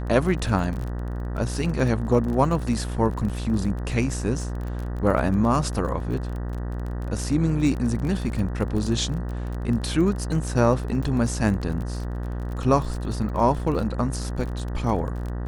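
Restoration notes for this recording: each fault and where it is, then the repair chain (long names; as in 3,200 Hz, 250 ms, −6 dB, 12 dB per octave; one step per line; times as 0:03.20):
mains buzz 60 Hz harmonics 32 −29 dBFS
surface crackle 29 per second −30 dBFS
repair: click removal
hum removal 60 Hz, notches 32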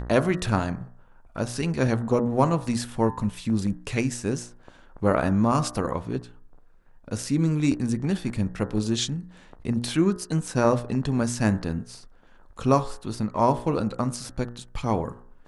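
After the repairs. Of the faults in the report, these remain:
none of them is left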